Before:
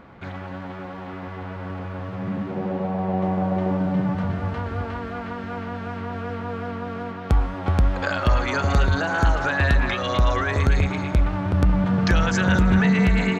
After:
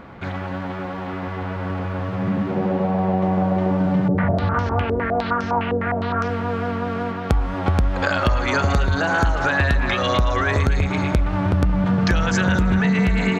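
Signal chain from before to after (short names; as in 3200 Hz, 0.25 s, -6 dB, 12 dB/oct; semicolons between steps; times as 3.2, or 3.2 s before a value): compressor, threshold -21 dBFS, peak gain reduction 7.5 dB; 4.08–6.28 stepped low-pass 9.8 Hz 450–5800 Hz; gain +6 dB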